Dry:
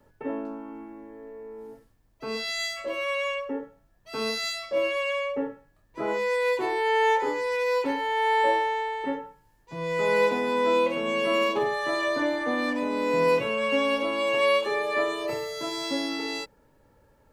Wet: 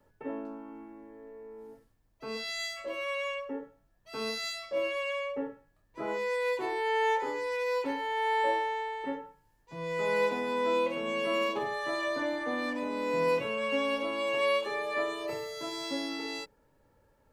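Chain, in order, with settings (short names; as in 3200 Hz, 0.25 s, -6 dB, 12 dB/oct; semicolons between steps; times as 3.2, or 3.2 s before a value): notches 60/120/180/240/300/360/420 Hz; gain -5.5 dB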